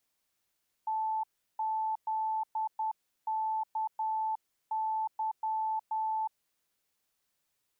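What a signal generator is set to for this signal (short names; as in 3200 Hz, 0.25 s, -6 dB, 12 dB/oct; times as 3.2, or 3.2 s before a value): Morse "TZKY" 10 wpm 876 Hz -29 dBFS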